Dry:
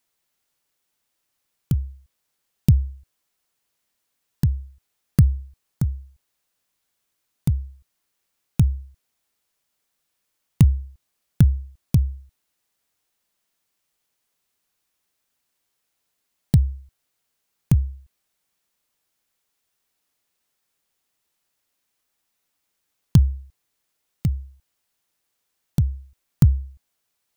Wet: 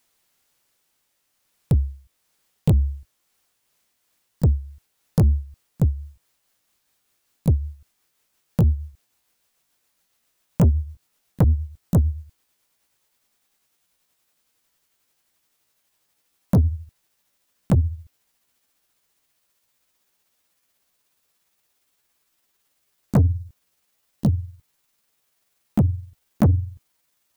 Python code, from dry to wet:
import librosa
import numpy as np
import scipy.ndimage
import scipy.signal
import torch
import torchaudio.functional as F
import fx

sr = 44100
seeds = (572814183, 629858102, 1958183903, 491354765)

y = fx.pitch_glide(x, sr, semitones=6.5, runs='starting unshifted')
y = fx.spec_box(y, sr, start_s=23.14, length_s=0.33, low_hz=820.0, high_hz=3600.0, gain_db=-9)
y = 10.0 ** (-19.0 / 20.0) * np.tanh(y / 10.0 ** (-19.0 / 20.0))
y = F.gain(torch.from_numpy(y), 7.5).numpy()